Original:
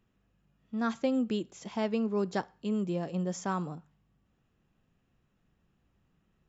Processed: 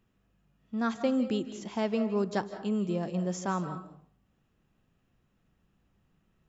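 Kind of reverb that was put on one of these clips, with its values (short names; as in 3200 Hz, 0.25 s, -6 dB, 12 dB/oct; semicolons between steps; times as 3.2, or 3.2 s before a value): digital reverb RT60 0.52 s, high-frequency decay 0.55×, pre-delay 0.12 s, DRR 10.5 dB; gain +1 dB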